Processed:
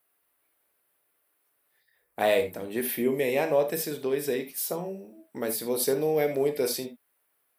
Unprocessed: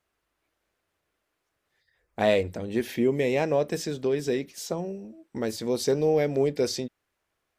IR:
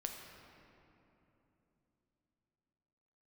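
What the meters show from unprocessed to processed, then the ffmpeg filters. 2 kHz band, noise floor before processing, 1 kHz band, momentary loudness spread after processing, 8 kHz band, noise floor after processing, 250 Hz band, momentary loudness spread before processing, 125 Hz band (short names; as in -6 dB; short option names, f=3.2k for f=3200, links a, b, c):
+0.5 dB, -80 dBFS, +0.5 dB, 10 LU, +4.0 dB, -74 dBFS, -3.5 dB, 10 LU, -7.5 dB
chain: -filter_complex "[0:a]highshelf=f=5.7k:g=-5.5,aexciter=amount=12.1:drive=3.7:freq=9.3k,highpass=f=380:p=1[a];[1:a]atrim=start_sample=2205,atrim=end_sample=3969[b];[a][b]afir=irnorm=-1:irlink=0,volume=3.5dB"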